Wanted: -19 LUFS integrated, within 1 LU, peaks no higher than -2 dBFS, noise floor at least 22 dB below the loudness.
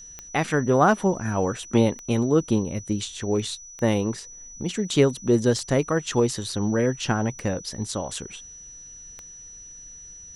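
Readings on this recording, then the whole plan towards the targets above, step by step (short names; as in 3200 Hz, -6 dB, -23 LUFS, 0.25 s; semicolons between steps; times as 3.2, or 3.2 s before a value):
clicks 6; steady tone 5900 Hz; tone level -41 dBFS; loudness -24.0 LUFS; peak -6.0 dBFS; loudness target -19.0 LUFS
-> de-click; notch 5900 Hz, Q 30; gain +5 dB; limiter -2 dBFS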